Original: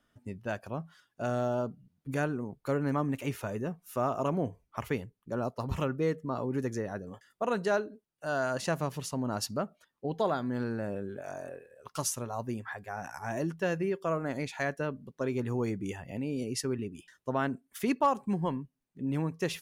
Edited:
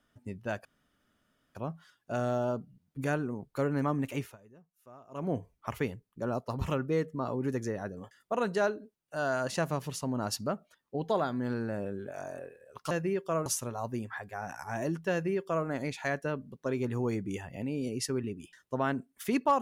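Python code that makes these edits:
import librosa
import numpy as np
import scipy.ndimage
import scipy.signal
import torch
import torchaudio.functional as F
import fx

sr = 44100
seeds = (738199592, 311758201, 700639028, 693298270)

y = fx.edit(x, sr, fx.insert_room_tone(at_s=0.65, length_s=0.9),
    fx.fade_down_up(start_s=3.26, length_s=1.16, db=-22.5, fade_s=0.21),
    fx.duplicate(start_s=13.67, length_s=0.55, to_s=12.01), tone=tone)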